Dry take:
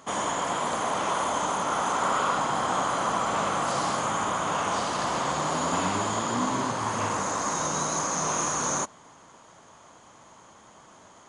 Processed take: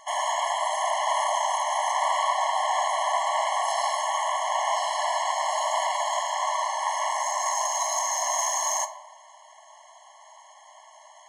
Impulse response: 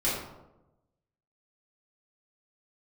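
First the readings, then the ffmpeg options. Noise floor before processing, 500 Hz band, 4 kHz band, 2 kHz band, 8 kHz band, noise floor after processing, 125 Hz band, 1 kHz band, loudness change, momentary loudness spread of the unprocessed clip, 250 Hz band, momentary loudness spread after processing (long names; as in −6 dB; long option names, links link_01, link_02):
−53 dBFS, 0.0 dB, +2.5 dB, 0.0 dB, +1.5 dB, −52 dBFS, below −40 dB, +2.5 dB, +1.5 dB, 2 LU, below −40 dB, 2 LU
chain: -filter_complex "[0:a]aeval=exprs='(tanh(7.08*val(0)+0.55)-tanh(0.55))/7.08':channel_layout=same,asplit=2[link_01][link_02];[1:a]atrim=start_sample=2205[link_03];[link_02][link_03]afir=irnorm=-1:irlink=0,volume=-17.5dB[link_04];[link_01][link_04]amix=inputs=2:normalize=0,afftfilt=real='re*eq(mod(floor(b*sr/1024/560),2),1)':imag='im*eq(mod(floor(b*sr/1024/560),2),1)':win_size=1024:overlap=0.75,volume=5.5dB"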